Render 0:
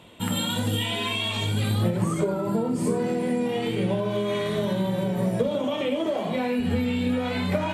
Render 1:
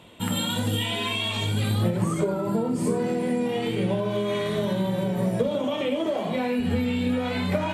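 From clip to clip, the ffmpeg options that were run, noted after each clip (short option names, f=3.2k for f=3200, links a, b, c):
-af anull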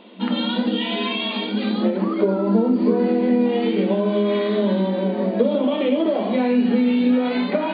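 -af "lowshelf=f=490:g=9,afftfilt=real='re*between(b*sr/4096,190,4800)':imag='im*between(b*sr/4096,190,4800)':win_size=4096:overlap=0.75,volume=1.5dB"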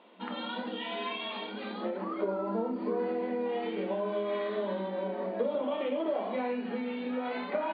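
-filter_complex "[0:a]bandpass=f=1.1k:t=q:w=0.77:csg=0,asplit=2[a][b];[b]adelay=31,volume=-11dB[c];[a][c]amix=inputs=2:normalize=0,volume=-7dB"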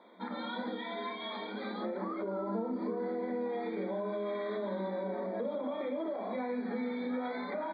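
-filter_complex "[0:a]acrossover=split=230[a][b];[b]alimiter=level_in=5.5dB:limit=-24dB:level=0:latency=1:release=91,volume=-5.5dB[c];[a][c]amix=inputs=2:normalize=0,asuperstop=centerf=2800:order=20:qfactor=3.2"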